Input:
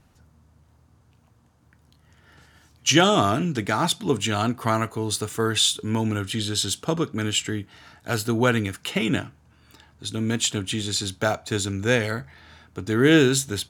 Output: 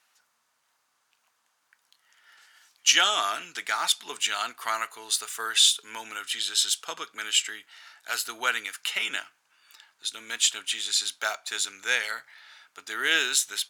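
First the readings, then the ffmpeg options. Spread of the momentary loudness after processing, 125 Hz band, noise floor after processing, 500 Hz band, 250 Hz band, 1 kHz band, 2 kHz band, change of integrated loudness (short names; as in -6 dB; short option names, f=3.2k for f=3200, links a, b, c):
15 LU, under -35 dB, -73 dBFS, -16.5 dB, -26.0 dB, -4.5 dB, 0.0 dB, -2.5 dB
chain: -af "highpass=1.4k,volume=1.5dB"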